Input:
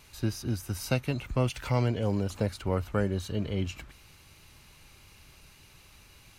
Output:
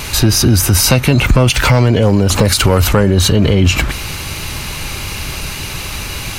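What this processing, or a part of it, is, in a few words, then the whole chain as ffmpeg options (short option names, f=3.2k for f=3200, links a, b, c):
loud club master: -filter_complex "[0:a]asettb=1/sr,asplit=3[a][b][c];[a]atrim=end=2.454[d];[b]atrim=start=2.45:end=2.93,asetpts=PTS-STARTPTS,afade=t=in:d=0.004:c=qsin,afade=t=out:st=0.476:d=0.004:c=qsin,highshelf=f=3k:g=10[e];[c]atrim=start=2.926[f];[d][e]acrossfade=d=0.004:c1=hsin:c2=qsin[g];[g][f]acrossfade=d=0.004:c1=qsin:c2=hsin,acompressor=threshold=-31dB:ratio=2,asoftclip=type=hard:threshold=-23.5dB,alimiter=level_in=33dB:limit=-1dB:release=50:level=0:latency=1,volume=-1dB"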